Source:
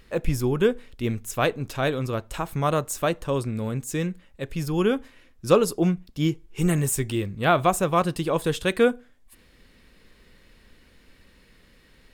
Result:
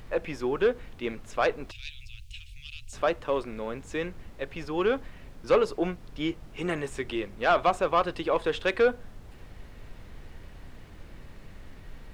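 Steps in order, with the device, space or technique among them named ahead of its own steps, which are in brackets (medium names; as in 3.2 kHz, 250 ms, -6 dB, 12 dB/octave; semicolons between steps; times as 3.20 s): de-esser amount 40%; aircraft cabin announcement (band-pass 420–3100 Hz; saturation -15.5 dBFS, distortion -13 dB; brown noise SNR 13 dB); 1.71–2.93 s: Chebyshev band-stop 110–2600 Hz, order 4; trim +1.5 dB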